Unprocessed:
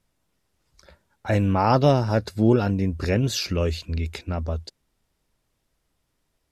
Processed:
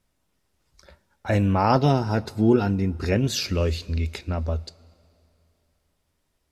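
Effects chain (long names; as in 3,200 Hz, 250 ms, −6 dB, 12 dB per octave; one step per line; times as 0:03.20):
0:01.76–0:03.12: notch comb filter 570 Hz
coupled-rooms reverb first 0.21 s, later 2.8 s, from −18 dB, DRR 14 dB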